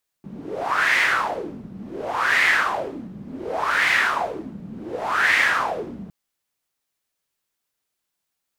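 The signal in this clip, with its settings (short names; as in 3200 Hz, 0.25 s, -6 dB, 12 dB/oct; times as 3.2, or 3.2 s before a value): wind-like swept noise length 5.86 s, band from 190 Hz, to 2000 Hz, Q 5.5, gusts 4, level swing 19 dB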